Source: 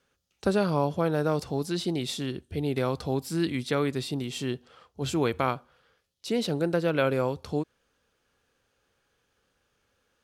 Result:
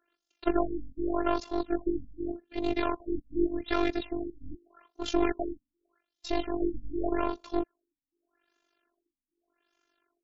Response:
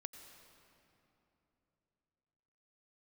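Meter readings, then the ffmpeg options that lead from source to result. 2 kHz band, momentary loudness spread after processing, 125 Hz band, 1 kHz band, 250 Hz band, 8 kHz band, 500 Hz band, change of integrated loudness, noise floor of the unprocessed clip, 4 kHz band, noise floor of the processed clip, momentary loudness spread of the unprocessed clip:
-5.0 dB, 10 LU, -16.0 dB, -1.5 dB, -1.5 dB, -12.0 dB, -4.0 dB, -3.5 dB, -75 dBFS, -7.0 dB, under -85 dBFS, 8 LU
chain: -af "highpass=f=170:w=0.5412,highpass=f=170:w=1.3066,aeval=exprs='0.299*(cos(1*acos(clip(val(0)/0.299,-1,1)))-cos(1*PI/2))+0.0335*(cos(8*acos(clip(val(0)/0.299,-1,1)))-cos(8*PI/2))':c=same,tremolo=f=48:d=0.857,afftfilt=real='hypot(re,im)*cos(PI*b)':imag='0':win_size=512:overlap=0.75,afftfilt=real='re*lt(b*sr/1024,270*pow(7700/270,0.5+0.5*sin(2*PI*0.84*pts/sr)))':imag='im*lt(b*sr/1024,270*pow(7700/270,0.5+0.5*sin(2*PI*0.84*pts/sr)))':win_size=1024:overlap=0.75,volume=5.5dB"

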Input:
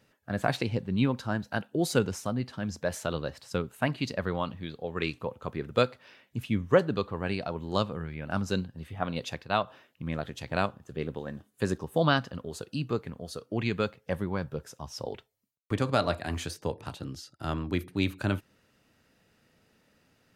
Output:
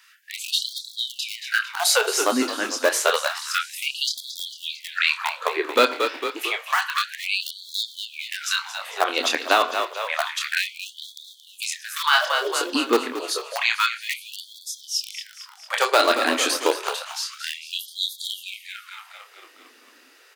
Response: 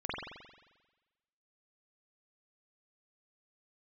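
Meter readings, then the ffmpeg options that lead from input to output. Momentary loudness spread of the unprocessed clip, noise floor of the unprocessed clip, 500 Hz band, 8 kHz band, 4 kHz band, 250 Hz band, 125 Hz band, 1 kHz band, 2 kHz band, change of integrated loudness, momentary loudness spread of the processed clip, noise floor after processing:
12 LU, -69 dBFS, +4.5 dB, +17.5 dB, +15.5 dB, -1.5 dB, under -30 dB, +9.5 dB, +12.5 dB, +8.0 dB, 15 LU, -53 dBFS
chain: -filter_complex "[0:a]highpass=f=78:w=0.5412,highpass=f=78:w=1.3066,lowshelf=f=200:g=-8.5,acrossover=split=490|870[a][b][c];[a]asoftclip=type=hard:threshold=-25.5dB[d];[b]acrusher=bits=3:dc=4:mix=0:aa=0.000001[e];[c]asplit=2[f][g];[g]adelay=26,volume=-4dB[h];[f][h]amix=inputs=2:normalize=0[i];[d][e][i]amix=inputs=3:normalize=0,asplit=8[j][k][l][m][n][o][p][q];[k]adelay=225,afreqshift=-46,volume=-12dB[r];[l]adelay=450,afreqshift=-92,volume=-16.3dB[s];[m]adelay=675,afreqshift=-138,volume=-20.6dB[t];[n]adelay=900,afreqshift=-184,volume=-24.9dB[u];[o]adelay=1125,afreqshift=-230,volume=-29.2dB[v];[p]adelay=1350,afreqshift=-276,volume=-33.5dB[w];[q]adelay=1575,afreqshift=-322,volume=-37.8dB[x];[j][r][s][t][u][v][w][x]amix=inputs=8:normalize=0,asplit=2[y][z];[1:a]atrim=start_sample=2205,asetrate=83790,aresample=44100[aa];[z][aa]afir=irnorm=-1:irlink=0,volume=-15.5dB[ab];[y][ab]amix=inputs=2:normalize=0,alimiter=level_in=19dB:limit=-1dB:release=50:level=0:latency=1,afftfilt=real='re*gte(b*sr/1024,220*pow(3300/220,0.5+0.5*sin(2*PI*0.29*pts/sr)))':imag='im*gte(b*sr/1024,220*pow(3300/220,0.5+0.5*sin(2*PI*0.29*pts/sr)))':win_size=1024:overlap=0.75,volume=-4dB"

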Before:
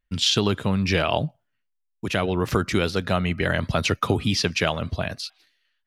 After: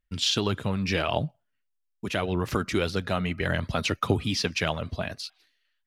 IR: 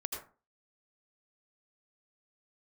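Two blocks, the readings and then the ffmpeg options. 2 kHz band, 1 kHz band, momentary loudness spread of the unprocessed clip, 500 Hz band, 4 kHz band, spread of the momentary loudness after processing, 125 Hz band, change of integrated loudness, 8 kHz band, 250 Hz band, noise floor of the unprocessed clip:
-4.0 dB, -4.0 dB, 8 LU, -4.5 dB, -4.0 dB, 8 LU, -4.5 dB, -4.0 dB, -4.0 dB, -4.5 dB, -76 dBFS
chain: -af "aphaser=in_gain=1:out_gain=1:delay=5:decay=0.32:speed=1.7:type=triangular,volume=-4.5dB"

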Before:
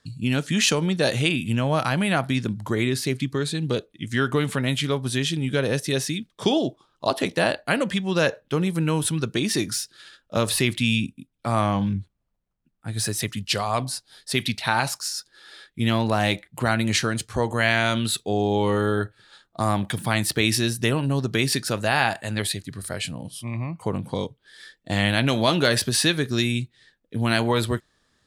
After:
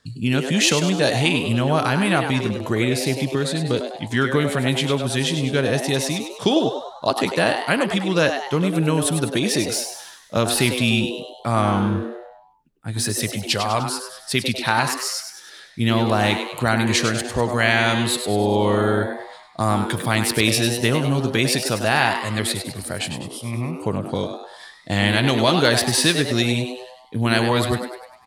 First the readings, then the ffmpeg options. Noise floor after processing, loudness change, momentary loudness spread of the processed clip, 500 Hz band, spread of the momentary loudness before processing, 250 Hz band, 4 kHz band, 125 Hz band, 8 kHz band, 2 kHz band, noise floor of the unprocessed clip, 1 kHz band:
-46 dBFS, +3.5 dB, 10 LU, +4.0 dB, 10 LU, +3.5 dB, +3.5 dB, +2.5 dB, +3.5 dB, +3.5 dB, -72 dBFS, +4.0 dB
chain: -filter_complex "[0:a]asplit=7[a][b][c][d][e][f][g];[b]adelay=100,afreqshift=130,volume=-8dB[h];[c]adelay=200,afreqshift=260,volume=-14.2dB[i];[d]adelay=300,afreqshift=390,volume=-20.4dB[j];[e]adelay=400,afreqshift=520,volume=-26.6dB[k];[f]adelay=500,afreqshift=650,volume=-32.8dB[l];[g]adelay=600,afreqshift=780,volume=-39dB[m];[a][h][i][j][k][l][m]amix=inputs=7:normalize=0,volume=2.5dB"

